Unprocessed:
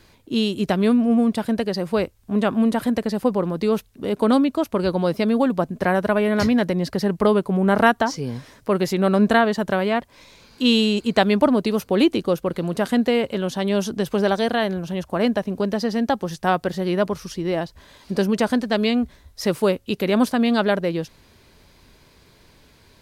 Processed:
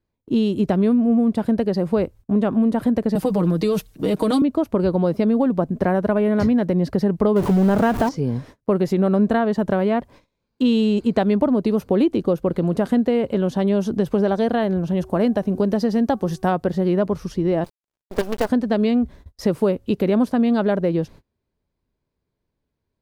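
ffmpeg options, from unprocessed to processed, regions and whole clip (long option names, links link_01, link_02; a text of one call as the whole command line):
ffmpeg -i in.wav -filter_complex "[0:a]asettb=1/sr,asplit=3[link_01][link_02][link_03];[link_01]atrim=end=3.154[link_04];[link_02]atrim=start=3.15:end=4.42,asetpts=PTS-STARTPTS,afade=type=in:duration=0.004:curve=qsin,afade=type=out:start_time=1.266:duration=0.004:curve=qsin,highshelf=frequency=2100:gain=11.5,aecho=1:1:6.4:0.83,atrim=end_sample=56007,acrossover=split=230|3000[link_05][link_06][link_07];[link_06]acompressor=threshold=-21dB:ratio=6:attack=3.2:release=140:knee=2.83:detection=peak[link_08];[link_05][link_08][link_07]amix=inputs=3:normalize=0[link_09];[link_03]atrim=start=4.416[link_10];[link_04][link_09]acrossfade=duration=0.004:curve1=hsin:curve2=qsin[link_11];[link_11][link_10]acrossfade=duration=0.004:curve1=qsin:curve2=hsin,asettb=1/sr,asplit=3[link_12][link_13][link_14];[link_12]atrim=end=7.364[link_15];[link_13]atrim=start=7.36:end=8.09,asetpts=PTS-STARTPTS,afade=type=in:duration=0.004:curve=qsin,afade=type=out:start_time=0.726:duration=0.004:curve=qsin,aeval=exprs='val(0)+0.5*0.126*sgn(val(0))':channel_layout=same,acrusher=bits=6:dc=4:mix=0:aa=0.000001[link_16];[link_14]atrim=start=8.086[link_17];[link_15][link_16]acrossfade=duration=0.004:curve1=hsin:curve2=qsin[link_18];[link_18][link_17]acrossfade=duration=0.004:curve1=qsin:curve2=hsin,asettb=1/sr,asplit=3[link_19][link_20][link_21];[link_19]atrim=end=14.974[link_22];[link_20]atrim=start=14.97:end=16.52,asetpts=PTS-STARTPTS,afade=type=in:duration=0.004:curve=qsin,afade=type=out:start_time=1.546:duration=0.004:curve=qsin,highshelf=frequency=4700:gain=7,bandreject=frequency=376.2:width_type=h:width=4,bandreject=frequency=752.4:width_type=h:width=4,bandreject=frequency=1128.6:width_type=h:width=4,bandreject=frequency=1504.8:width_type=h:width=4[link_23];[link_21]atrim=start=16.516[link_24];[link_22][link_23]acrossfade=duration=0.004:curve1=hsin:curve2=qsin[link_25];[link_25][link_24]acrossfade=duration=0.004:curve1=qsin:curve2=hsin,asettb=1/sr,asplit=3[link_26][link_27][link_28];[link_26]atrim=end=17.644[link_29];[link_27]atrim=start=17.64:end=18.49,asetpts=PTS-STARTPTS,afade=type=in:duration=0.004:curve=qsin,afade=type=out:start_time=0.846:duration=0.004:curve=qsin,highpass=410,acrusher=bits=4:dc=4:mix=0:aa=0.000001[link_30];[link_28]atrim=start=18.486[link_31];[link_29][link_30]acrossfade=duration=0.004:curve1=hsin:curve2=qsin[link_32];[link_32][link_31]acrossfade=duration=0.004:curve1=qsin:curve2=hsin,agate=range=-30dB:threshold=-43dB:ratio=16:detection=peak,tiltshelf=frequency=1200:gain=7,acompressor=threshold=-16dB:ratio=3" out.wav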